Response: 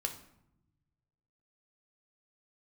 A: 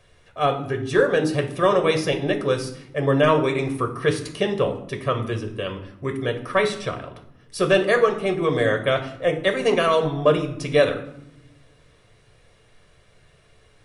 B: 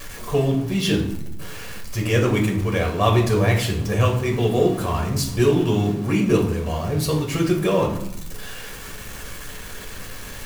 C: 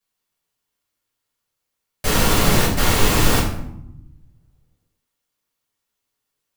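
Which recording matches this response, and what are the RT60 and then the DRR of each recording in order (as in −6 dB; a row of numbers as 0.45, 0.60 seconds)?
A; 0.80, 0.80, 0.80 seconds; 4.0, −0.5, −7.0 decibels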